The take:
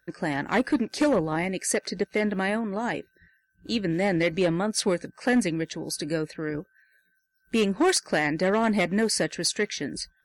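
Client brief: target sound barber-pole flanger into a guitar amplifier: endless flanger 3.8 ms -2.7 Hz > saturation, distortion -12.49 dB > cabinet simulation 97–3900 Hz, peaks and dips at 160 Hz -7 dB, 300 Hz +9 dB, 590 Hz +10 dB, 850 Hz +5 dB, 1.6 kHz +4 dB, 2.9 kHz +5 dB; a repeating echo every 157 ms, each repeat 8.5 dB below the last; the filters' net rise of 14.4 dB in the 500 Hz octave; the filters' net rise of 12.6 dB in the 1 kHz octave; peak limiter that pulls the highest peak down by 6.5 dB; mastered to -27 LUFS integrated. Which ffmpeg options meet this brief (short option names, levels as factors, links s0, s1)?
-filter_complex "[0:a]equalizer=f=500:t=o:g=8,equalizer=f=1000:t=o:g=7,alimiter=limit=0.251:level=0:latency=1,aecho=1:1:157|314|471|628:0.376|0.143|0.0543|0.0206,asplit=2[s0][s1];[s1]adelay=3.8,afreqshift=-2.7[s2];[s0][s2]amix=inputs=2:normalize=1,asoftclip=threshold=0.0944,highpass=97,equalizer=f=160:t=q:w=4:g=-7,equalizer=f=300:t=q:w=4:g=9,equalizer=f=590:t=q:w=4:g=10,equalizer=f=850:t=q:w=4:g=5,equalizer=f=1600:t=q:w=4:g=4,equalizer=f=2900:t=q:w=4:g=5,lowpass=f=3900:w=0.5412,lowpass=f=3900:w=1.3066,volume=0.668"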